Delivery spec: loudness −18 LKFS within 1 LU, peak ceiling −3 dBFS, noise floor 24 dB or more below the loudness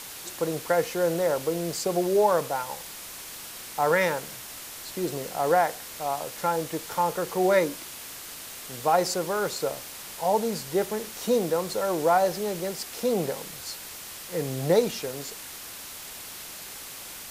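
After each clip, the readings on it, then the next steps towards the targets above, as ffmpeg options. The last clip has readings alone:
background noise floor −41 dBFS; target noise floor −52 dBFS; integrated loudness −28.0 LKFS; sample peak −8.0 dBFS; target loudness −18.0 LKFS
→ -af "afftdn=noise_reduction=11:noise_floor=-41"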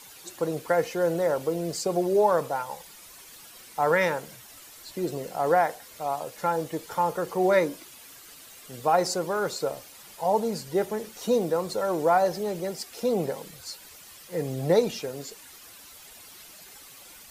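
background noise floor −48 dBFS; target noise floor −51 dBFS
→ -af "afftdn=noise_reduction=6:noise_floor=-48"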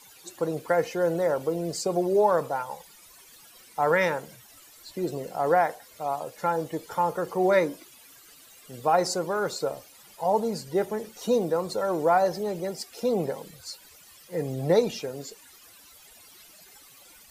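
background noise floor −53 dBFS; integrated loudness −27.0 LKFS; sample peak −8.5 dBFS; target loudness −18.0 LKFS
→ -af "volume=9dB,alimiter=limit=-3dB:level=0:latency=1"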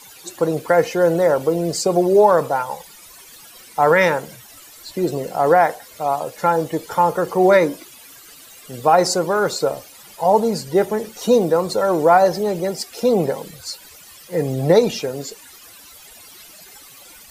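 integrated loudness −18.0 LKFS; sample peak −3.0 dBFS; background noise floor −44 dBFS

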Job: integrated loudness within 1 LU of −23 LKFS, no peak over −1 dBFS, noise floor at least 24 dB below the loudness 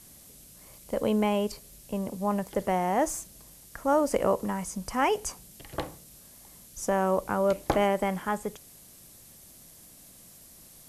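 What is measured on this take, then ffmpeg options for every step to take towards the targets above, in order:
background noise floor −52 dBFS; target noise floor −53 dBFS; integrated loudness −28.5 LKFS; sample peak −10.5 dBFS; target loudness −23.0 LKFS
→ -af "afftdn=noise_reduction=6:noise_floor=-52"
-af "volume=5.5dB"

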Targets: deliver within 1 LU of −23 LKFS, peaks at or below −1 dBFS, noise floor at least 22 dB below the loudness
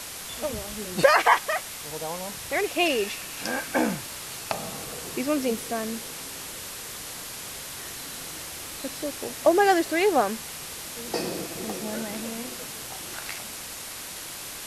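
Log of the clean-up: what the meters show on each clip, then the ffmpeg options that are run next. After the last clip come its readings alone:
background noise floor −38 dBFS; target noise floor −50 dBFS; integrated loudness −28.0 LKFS; sample peak −3.5 dBFS; target loudness −23.0 LKFS
→ -af "afftdn=noise_reduction=12:noise_floor=-38"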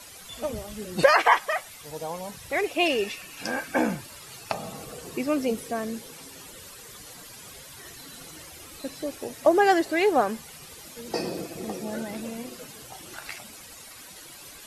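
background noise floor −46 dBFS; target noise floor −49 dBFS
→ -af "afftdn=noise_reduction=6:noise_floor=-46"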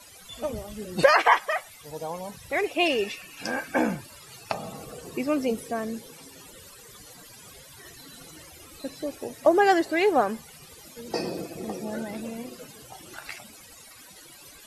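background noise floor −49 dBFS; integrated loudness −26.5 LKFS; sample peak −3.5 dBFS; target loudness −23.0 LKFS
→ -af "volume=3.5dB,alimiter=limit=-1dB:level=0:latency=1"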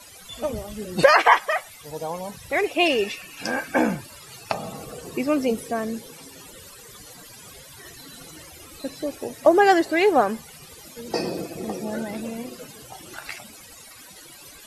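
integrated loudness −23.0 LKFS; sample peak −1.0 dBFS; background noise floor −45 dBFS

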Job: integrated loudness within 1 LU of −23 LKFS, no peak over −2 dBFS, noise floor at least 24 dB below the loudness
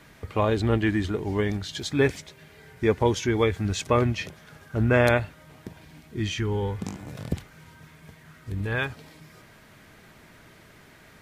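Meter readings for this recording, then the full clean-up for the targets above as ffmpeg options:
integrated loudness −26.0 LKFS; sample peak −5.5 dBFS; target loudness −23.0 LKFS
→ -af "volume=3dB"

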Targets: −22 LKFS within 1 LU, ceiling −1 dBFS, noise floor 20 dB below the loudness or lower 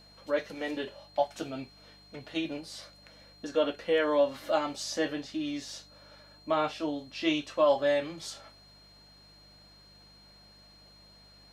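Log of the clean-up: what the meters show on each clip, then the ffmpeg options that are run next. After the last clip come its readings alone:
mains hum 50 Hz; hum harmonics up to 200 Hz; level of the hum −60 dBFS; interfering tone 4,200 Hz; level of the tone −56 dBFS; integrated loudness −31.0 LKFS; sample peak −13.5 dBFS; target loudness −22.0 LKFS
→ -af "bandreject=frequency=50:width_type=h:width=4,bandreject=frequency=100:width_type=h:width=4,bandreject=frequency=150:width_type=h:width=4,bandreject=frequency=200:width_type=h:width=4"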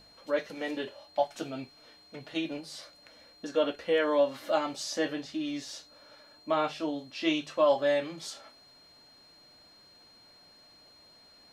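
mains hum none found; interfering tone 4,200 Hz; level of the tone −56 dBFS
→ -af "bandreject=frequency=4200:width=30"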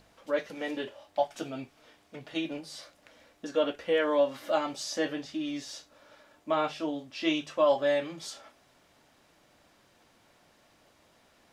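interfering tone none found; integrated loudness −31.0 LKFS; sample peak −13.5 dBFS; target loudness −22.0 LKFS
→ -af "volume=9dB"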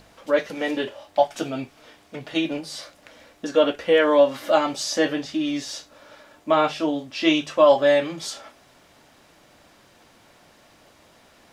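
integrated loudness −22.0 LKFS; sample peak −4.5 dBFS; background noise floor −55 dBFS

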